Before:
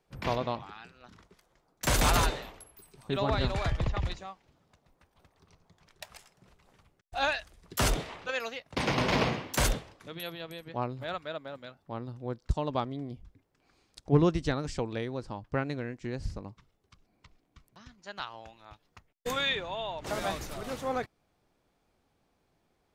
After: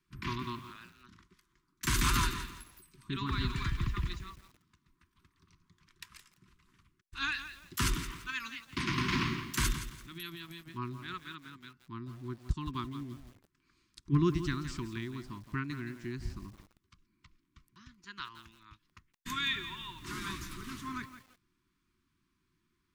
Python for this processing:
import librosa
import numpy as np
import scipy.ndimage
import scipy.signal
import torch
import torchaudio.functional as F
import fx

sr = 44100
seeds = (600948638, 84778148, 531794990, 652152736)

y = scipy.signal.sosfilt(scipy.signal.cheby1(4, 1.0, [370.0, 1000.0], 'bandstop', fs=sr, output='sos'), x)
y = fx.echo_crushed(y, sr, ms=169, feedback_pct=35, bits=8, wet_db=-11)
y = y * librosa.db_to_amplitude(-2.5)